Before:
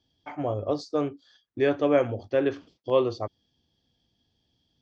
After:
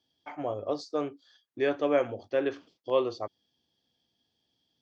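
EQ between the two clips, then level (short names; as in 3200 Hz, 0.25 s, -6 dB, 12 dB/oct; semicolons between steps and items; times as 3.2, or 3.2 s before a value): HPF 330 Hz 6 dB/oct; -2.0 dB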